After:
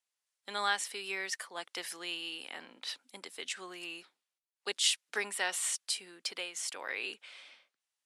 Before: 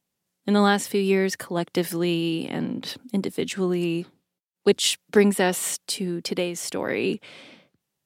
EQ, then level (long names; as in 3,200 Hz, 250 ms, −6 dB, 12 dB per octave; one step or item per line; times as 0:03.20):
high-pass filter 1,100 Hz 12 dB per octave
Butterworth low-pass 11,000 Hz 36 dB per octave
−5.5 dB